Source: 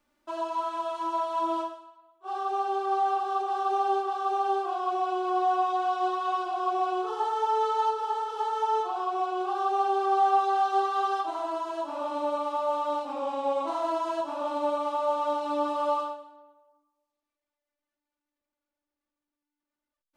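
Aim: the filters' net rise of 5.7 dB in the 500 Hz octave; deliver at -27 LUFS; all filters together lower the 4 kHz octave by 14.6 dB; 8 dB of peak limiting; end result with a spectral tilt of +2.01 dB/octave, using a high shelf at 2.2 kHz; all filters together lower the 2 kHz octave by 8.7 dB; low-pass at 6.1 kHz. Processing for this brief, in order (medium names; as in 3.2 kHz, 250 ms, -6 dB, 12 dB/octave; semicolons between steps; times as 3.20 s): low-pass 6.1 kHz; peaking EQ 500 Hz +9 dB; peaking EQ 2 kHz -8.5 dB; treble shelf 2.2 kHz -8.5 dB; peaking EQ 4 kHz -7.5 dB; trim +1.5 dB; peak limiter -19.5 dBFS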